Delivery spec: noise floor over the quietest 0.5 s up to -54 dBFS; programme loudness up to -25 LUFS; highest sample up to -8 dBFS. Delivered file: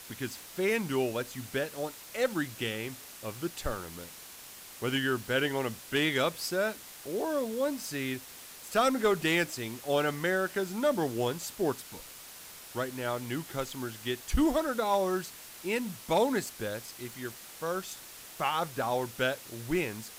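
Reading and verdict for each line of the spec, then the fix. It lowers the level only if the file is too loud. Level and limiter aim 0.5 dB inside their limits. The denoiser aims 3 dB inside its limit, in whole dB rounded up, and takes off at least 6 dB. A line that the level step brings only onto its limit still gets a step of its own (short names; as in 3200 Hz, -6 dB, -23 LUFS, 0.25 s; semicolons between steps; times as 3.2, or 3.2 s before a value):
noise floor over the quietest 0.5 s -48 dBFS: fail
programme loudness -32.0 LUFS: OK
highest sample -15.5 dBFS: OK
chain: denoiser 9 dB, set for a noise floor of -48 dBFS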